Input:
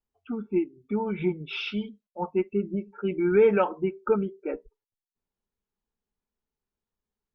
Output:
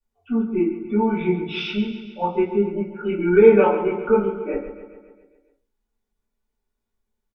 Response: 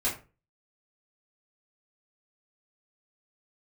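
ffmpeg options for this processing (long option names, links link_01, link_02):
-filter_complex "[0:a]aecho=1:1:137|274|411|548|685|822|959:0.282|0.166|0.0981|0.0579|0.0342|0.0201|0.0119[link_01];[1:a]atrim=start_sample=2205,asetrate=40572,aresample=44100[link_02];[link_01][link_02]afir=irnorm=-1:irlink=0,volume=-3dB"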